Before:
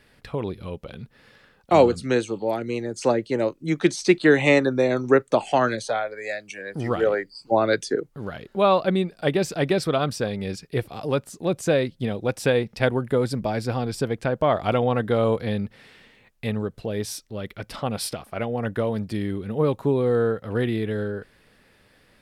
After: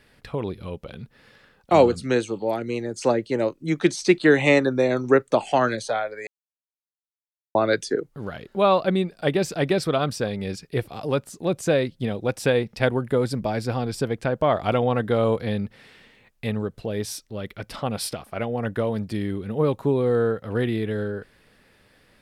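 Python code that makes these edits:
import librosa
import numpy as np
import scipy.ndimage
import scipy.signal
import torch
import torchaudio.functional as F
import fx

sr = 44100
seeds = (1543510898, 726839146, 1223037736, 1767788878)

y = fx.edit(x, sr, fx.silence(start_s=6.27, length_s=1.28), tone=tone)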